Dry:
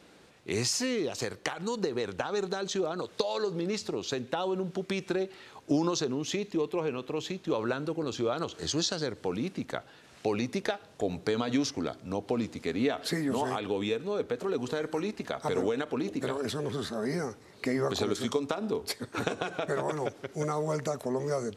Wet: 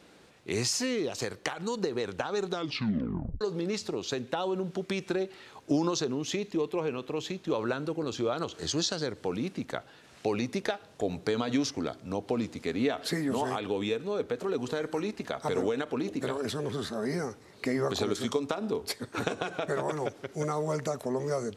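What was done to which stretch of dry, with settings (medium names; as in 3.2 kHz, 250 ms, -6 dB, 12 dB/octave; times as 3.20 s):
2.48 s: tape stop 0.93 s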